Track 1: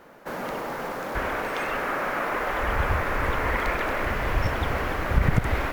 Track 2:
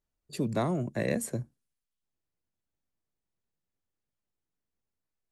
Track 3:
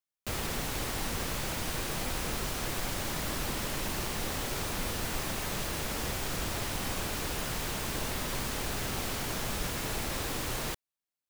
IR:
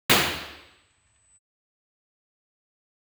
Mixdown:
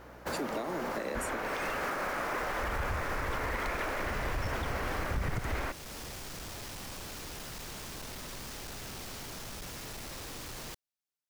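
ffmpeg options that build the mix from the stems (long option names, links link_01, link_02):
-filter_complex "[0:a]asoftclip=type=tanh:threshold=-14.5dB,volume=-1.5dB[link_01];[1:a]highpass=frequency=250:width=0.5412,highpass=frequency=250:width=1.3066,aeval=exprs='val(0)+0.00158*(sin(2*PI*60*n/s)+sin(2*PI*2*60*n/s)/2+sin(2*PI*3*60*n/s)/3+sin(2*PI*4*60*n/s)/4+sin(2*PI*5*60*n/s)/5)':channel_layout=same,volume=1.5dB,asplit=2[link_02][link_03];[2:a]asoftclip=type=tanh:threshold=-35dB,volume=-4.5dB[link_04];[link_03]apad=whole_len=498295[link_05];[link_04][link_05]sidechaincompress=threshold=-51dB:ratio=8:attack=16:release=170[link_06];[link_01][link_02][link_06]amix=inputs=3:normalize=0,equalizer=frequency=5400:width_type=o:width=0.77:gain=3.5,alimiter=level_in=1dB:limit=-24dB:level=0:latency=1:release=255,volume=-1dB"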